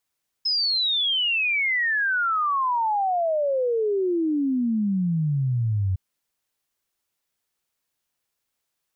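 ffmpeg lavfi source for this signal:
-f lavfi -i "aevalsrc='0.1*clip(min(t,5.51-t)/0.01,0,1)*sin(2*PI*5200*5.51/log(91/5200)*(exp(log(91/5200)*t/5.51)-1))':d=5.51:s=44100"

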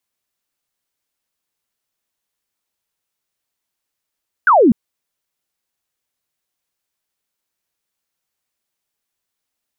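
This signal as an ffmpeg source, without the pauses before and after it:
-f lavfi -i "aevalsrc='0.447*clip(t/0.002,0,1)*clip((0.25-t)/0.002,0,1)*sin(2*PI*1600*0.25/log(200/1600)*(exp(log(200/1600)*t/0.25)-1))':d=0.25:s=44100"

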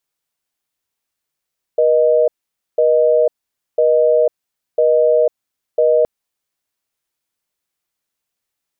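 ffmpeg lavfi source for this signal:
-f lavfi -i "aevalsrc='0.237*(sin(2*PI*480*t)+sin(2*PI*620*t))*clip(min(mod(t,1),0.5-mod(t,1))/0.005,0,1)':d=4.27:s=44100"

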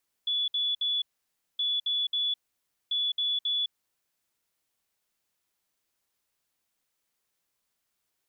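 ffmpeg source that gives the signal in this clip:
-f lavfi -i "aevalsrc='0.0562*sin(2*PI*3430*t)*clip(min(mod(mod(t,1.32),0.27),0.21-mod(mod(t,1.32),0.27))/0.005,0,1)*lt(mod(t,1.32),0.81)':d=3.96:s=44100"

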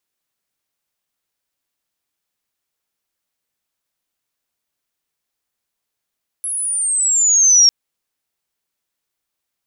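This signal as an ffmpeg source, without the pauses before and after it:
-f lavfi -i "aevalsrc='pow(10,(-20.5+14.5*t/1.25)/20)*sin(2*PI*11000*1.25/log(5500/11000)*(exp(log(5500/11000)*t/1.25)-1))':d=1.25:s=44100"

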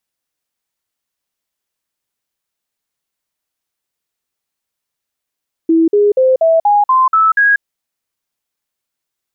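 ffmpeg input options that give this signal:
-f lavfi -i "aevalsrc='0.447*clip(min(mod(t,0.24),0.19-mod(t,0.24))/0.005,0,1)*sin(2*PI*327*pow(2,floor(t/0.24)/3)*mod(t,0.24))':d=1.92:s=44100"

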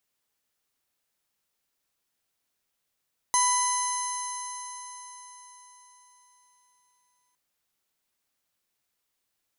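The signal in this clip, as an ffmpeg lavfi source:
-f lavfi -i "aevalsrc='0.0794*pow(10,-3*t/4.54)*sin(2*PI*989.73*t)+0.0224*pow(10,-3*t/4.54)*sin(2*PI*1989.78*t)+0.00841*pow(10,-3*t/4.54)*sin(2*PI*3010.32*t)+0.0178*pow(10,-3*t/4.54)*sin(2*PI*4061.15*t)+0.0126*pow(10,-3*t/4.54)*sin(2*PI*5151.59*t)+0.0562*pow(10,-3*t/4.54)*sin(2*PI*6290.39*t)+0.0119*pow(10,-3*t/4.54)*sin(2*PI*7485.59*t)+0.0141*pow(10,-3*t/4.54)*sin(2*PI*8744.55*t)+0.0501*pow(10,-3*t/4.54)*sin(2*PI*10073.89*t)':d=4.01:s=44100"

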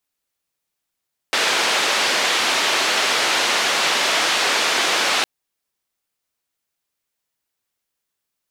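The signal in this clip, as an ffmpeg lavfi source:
-f lavfi -i "anoisesrc=c=white:d=3.91:r=44100:seed=1,highpass=f=380,lowpass=f=4000,volume=-6.7dB"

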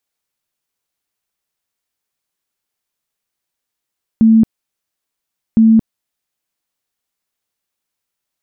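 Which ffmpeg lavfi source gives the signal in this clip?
-f lavfi -i "aevalsrc='0.562*sin(2*PI*223*mod(t,1.36))*lt(mod(t,1.36),50/223)':d=2.72:s=44100"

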